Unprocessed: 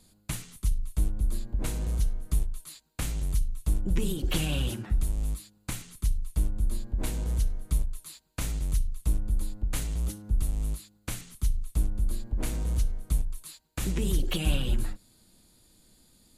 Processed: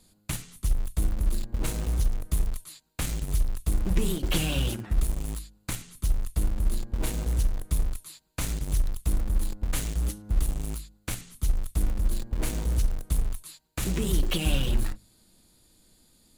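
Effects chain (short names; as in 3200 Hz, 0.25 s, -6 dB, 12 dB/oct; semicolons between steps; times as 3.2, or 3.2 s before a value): notches 50/100/150/200/250 Hz; in parallel at -10 dB: bit-crush 5-bit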